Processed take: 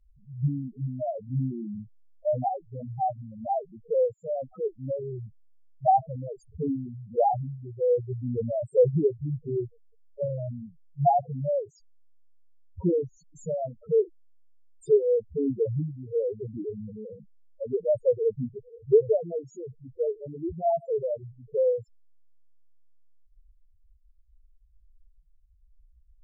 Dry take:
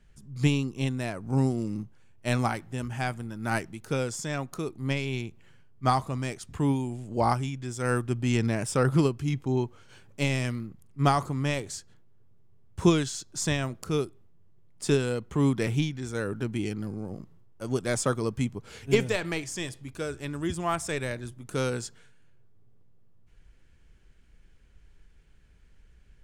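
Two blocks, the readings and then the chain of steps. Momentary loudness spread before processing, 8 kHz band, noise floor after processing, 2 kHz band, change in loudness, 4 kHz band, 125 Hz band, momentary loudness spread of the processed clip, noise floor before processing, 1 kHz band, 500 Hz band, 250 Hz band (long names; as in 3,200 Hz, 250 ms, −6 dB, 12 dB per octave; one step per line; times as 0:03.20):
11 LU, below −20 dB, −60 dBFS, below −40 dB, +0.5 dB, below −35 dB, −5.0 dB, 16 LU, −56 dBFS, +3.0 dB, +6.0 dB, −6.0 dB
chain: flat-topped bell 590 Hz +10.5 dB 1.1 octaves
spectral peaks only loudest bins 2
treble cut that deepens with the level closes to 1,500 Hz, closed at −24.5 dBFS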